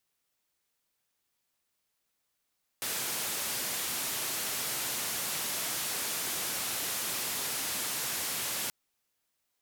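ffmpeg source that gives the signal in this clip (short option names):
-f lavfi -i "anoisesrc=c=white:d=5.88:r=44100:seed=1,highpass=f=100,lowpass=f=15000,volume=-27.4dB"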